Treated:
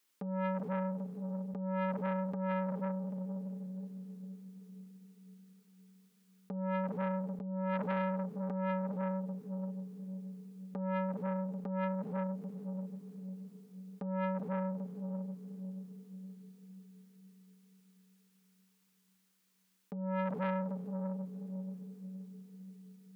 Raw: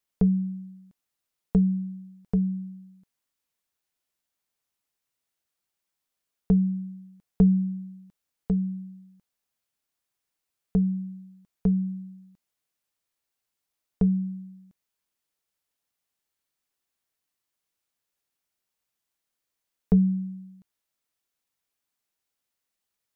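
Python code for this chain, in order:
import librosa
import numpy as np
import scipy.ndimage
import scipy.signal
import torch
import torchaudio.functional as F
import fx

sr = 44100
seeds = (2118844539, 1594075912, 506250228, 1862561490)

y = scipy.signal.sosfilt(scipy.signal.butter(4, 190.0, 'highpass', fs=sr, output='sos'), x)
y = fx.peak_eq(y, sr, hz=660.0, db=-9.0, octaves=0.55)
y = fx.echo_diffused(y, sr, ms=453, feedback_pct=55, wet_db=-13.0)
y = fx.over_compress(y, sr, threshold_db=-33.0, ratio=-1.0)
y = fx.transformer_sat(y, sr, knee_hz=1000.0)
y = y * 10.0 ** (4.0 / 20.0)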